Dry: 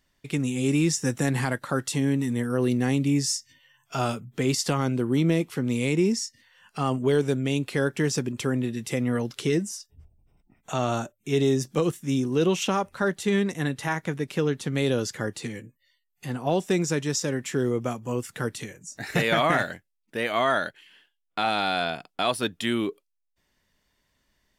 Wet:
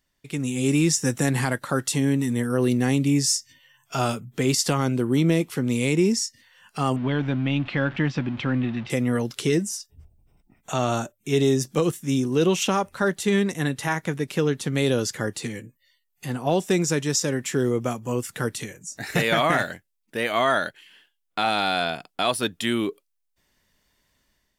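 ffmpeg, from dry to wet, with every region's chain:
ffmpeg -i in.wav -filter_complex "[0:a]asettb=1/sr,asplit=3[link_01][link_02][link_03];[link_01]atrim=end=6.964[link_04];[link_02]atrim=start=6.96:end=8.9,asetpts=PTS-STARTPTS,afade=type=in:duration=0.004:curve=qsin,afade=type=out:start_time=1.936:duration=0.004:curve=qsin,aeval=exprs='val(0)+0.5*0.0141*sgn(val(0))':channel_layout=same,lowpass=frequency=3300:width=0.5412,lowpass=frequency=3300:width=1.3066,equalizer=frequency=420:width_type=o:width=0.28:gain=-15[link_05];[link_03]atrim=start=8.896[link_06];[link_04][link_05]acrossfade=duration=0.004:curve1=hsin:curve2=qsin[link_07];[link_07][link_06]acrossfade=duration=0.004:curve1=qsin:curve2=hsin,highshelf=frequency=6400:gain=5,dynaudnorm=framelen=170:gausssize=5:maxgain=7.5dB,volume=-5dB" out.wav

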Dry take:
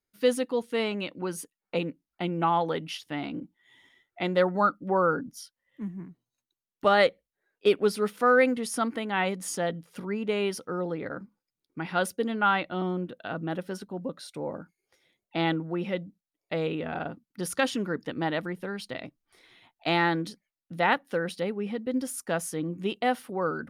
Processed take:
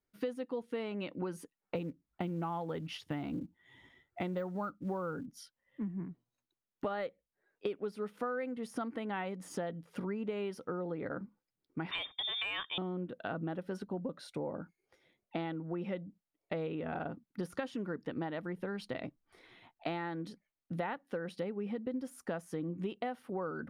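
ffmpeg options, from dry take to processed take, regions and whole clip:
ffmpeg -i in.wav -filter_complex "[0:a]asettb=1/sr,asplit=3[link_01][link_02][link_03];[link_01]atrim=end=1.754[link_04];[link_02]atrim=start=1.75:end=5.26,asetpts=PTS-STARTPTS,afade=type=in:duration=0.004:curve=qsin,afade=type=out:start_time=3.506:duration=0.004:curve=qsin,equalizer=frequency=78:width_type=o:width=2.1:gain=11,acrusher=bits=7:mode=log:mix=0:aa=0.000001[link_05];[link_03]atrim=start=5.256[link_06];[link_04][link_05]acrossfade=duration=0.004:curve1=hsin:curve2=qsin[link_07];[link_07][link_06]acrossfade=duration=0.004:curve1=qsin:curve2=hsin,asettb=1/sr,asplit=3[link_08][link_09][link_10];[link_08]atrim=end=11.914[link_11];[link_09]atrim=start=11.91:end=12.78,asetpts=PTS-STARTPTS,afade=type=in:duration=0.004:curve=qsin,afade=type=out:start_time=0.866:duration=0.004:curve=qsin,lowpass=frequency=3200:width_type=q:width=0.5098,lowpass=frequency=3200:width_type=q:width=0.6013,lowpass=frequency=3200:width_type=q:width=0.9,lowpass=frequency=3200:width_type=q:width=2.563,afreqshift=-3800,acontrast=33[link_12];[link_10]atrim=start=12.776[link_13];[link_11][link_12]acrossfade=duration=0.004:curve1=hsin:curve2=qsin[link_14];[link_14][link_13]acrossfade=duration=0.004:curve1=qsin:curve2=hsin,deesser=0.7,highshelf=frequency=2900:gain=-12,acompressor=threshold=-36dB:ratio=10,volume=2dB" out.wav

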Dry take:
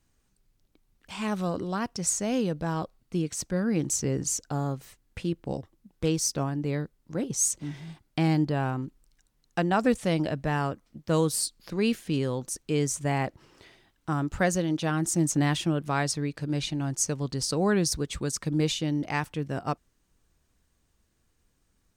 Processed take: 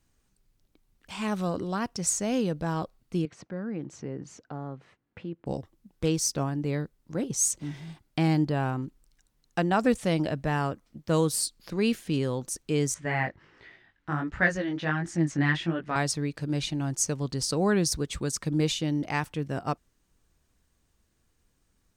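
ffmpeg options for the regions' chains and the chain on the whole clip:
ffmpeg -i in.wav -filter_complex "[0:a]asettb=1/sr,asplit=3[link_01][link_02][link_03];[link_01]atrim=end=3.254[link_04];[link_02]atrim=start=3.25:end=5.46,asetpts=PTS-STARTPTS,afade=type=in:duration=0.004:curve=qsin,afade=type=out:start_time=2.206:duration=0.004:curve=qsin,highpass=130,lowpass=2100,acompressor=threshold=-43dB:ratio=1.5:attack=3.2:release=140:knee=1:detection=peak[link_05];[link_03]atrim=start=5.456[link_06];[link_04][link_05]acrossfade=duration=0.004:curve1=hsin:curve2=qsin[link_07];[link_07][link_06]acrossfade=duration=0.004:curve1=qsin:curve2=hsin,asettb=1/sr,asplit=3[link_08][link_09][link_10];[link_08]atrim=end=12.944[link_11];[link_09]atrim=start=12.94:end=15.96,asetpts=PTS-STARTPTS,afade=type=in:duration=0.004:curve=qsin,afade=type=out:start_time=3.016:duration=0.004:curve=qsin,lowpass=4000,equalizer=frequency=1800:width_type=o:width=0.64:gain=11,flanger=delay=17:depth=4.6:speed=1.4[link_12];[link_10]atrim=start=15.956[link_13];[link_11][link_12]acrossfade=duration=0.004:curve1=hsin:curve2=qsin[link_14];[link_14][link_13]acrossfade=duration=0.004:curve1=qsin:curve2=hsin" out.wav

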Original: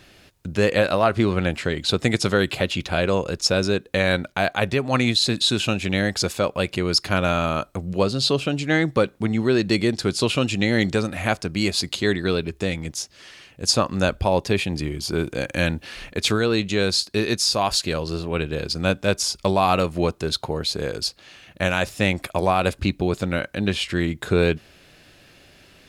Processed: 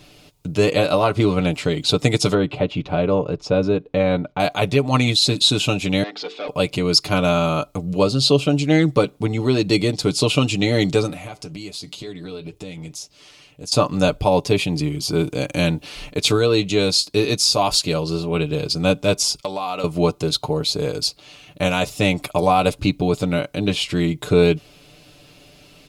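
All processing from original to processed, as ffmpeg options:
ffmpeg -i in.wav -filter_complex "[0:a]asettb=1/sr,asplit=3[link_01][link_02][link_03];[link_01]atrim=end=2.344[link_04];[link_02]atrim=start=2.34:end=4.4,asetpts=PTS-STARTPTS,afade=type=in:duration=0.004:curve=qsin,afade=type=out:start_time=2.056:duration=0.004:curve=qsin,lowpass=frequency=2200:poles=1,aemphasis=mode=reproduction:type=75kf[link_05];[link_03]atrim=start=4.396[link_06];[link_04][link_05]acrossfade=duration=0.004:curve1=hsin:curve2=qsin[link_07];[link_07][link_06]acrossfade=duration=0.004:curve1=qsin:curve2=hsin,asettb=1/sr,asplit=3[link_08][link_09][link_10];[link_08]atrim=end=6.034[link_11];[link_09]atrim=start=6.03:end=6.48,asetpts=PTS-STARTPTS,afade=type=in:duration=0.004:curve=qsin,afade=type=out:start_time=0.446:duration=0.004:curve=qsin,bandreject=frequency=50:width_type=h:width=6,bandreject=frequency=100:width_type=h:width=6,bandreject=frequency=150:width_type=h:width=6,bandreject=frequency=200:width_type=h:width=6,bandreject=frequency=250:width_type=h:width=6,bandreject=frequency=300:width_type=h:width=6,bandreject=frequency=350:width_type=h:width=6,bandreject=frequency=400:width_type=h:width=6,bandreject=frequency=450:width_type=h:width=6,volume=21dB,asoftclip=hard,volume=-21dB,highpass=frequency=330:width=0.5412,highpass=frequency=330:width=1.3066,equalizer=frequency=350:width_type=q:width=4:gain=-7,equalizer=frequency=590:width_type=q:width=4:gain=-8,equalizer=frequency=1000:width_type=q:width=4:gain=-9,equalizer=frequency=2700:width_type=q:width=4:gain=-4,lowpass=frequency=3800:width=0.5412,lowpass=frequency=3800:width=1.3066[link_12];[link_10]atrim=start=6.476[link_13];[link_11][link_12]acrossfade=duration=0.004:curve1=hsin:curve2=qsin[link_14];[link_14][link_13]acrossfade=duration=0.004:curve1=qsin:curve2=hsin,asettb=1/sr,asplit=3[link_15][link_16][link_17];[link_15]atrim=end=11.134[link_18];[link_16]atrim=start=11.13:end=13.72,asetpts=PTS-STARTPTS,afade=type=in:duration=0.004:curve=qsin,afade=type=out:start_time=2.586:duration=0.004:curve=qsin,acompressor=threshold=-28dB:ratio=6:attack=3.2:release=140:knee=1:detection=peak,flanger=delay=3.8:depth=4.8:regen=-76:speed=2:shape=sinusoidal[link_19];[link_17]atrim=start=13.716[link_20];[link_18][link_19]acrossfade=duration=0.004:curve1=hsin:curve2=qsin[link_21];[link_21][link_20]acrossfade=duration=0.004:curve1=qsin:curve2=hsin,asettb=1/sr,asplit=3[link_22][link_23][link_24];[link_22]atrim=end=19.404[link_25];[link_23]atrim=start=19.4:end=19.84,asetpts=PTS-STARTPTS,afade=type=in:duration=0.004:curve=qsin,afade=type=out:start_time=0.436:duration=0.004:curve=qsin,highpass=frequency=540:poles=1,equalizer=frequency=10000:width_type=o:width=0.58:gain=-5.5,acompressor=threshold=-25dB:ratio=4:attack=3.2:release=140:knee=1:detection=peak[link_26];[link_24]atrim=start=19.836[link_27];[link_25][link_26]acrossfade=duration=0.004:curve1=hsin:curve2=qsin[link_28];[link_28][link_27]acrossfade=duration=0.004:curve1=qsin:curve2=hsin,equalizer=frequency=1700:width=3.1:gain=-12.5,aecho=1:1:6.8:0.65,volume=2.5dB" out.wav

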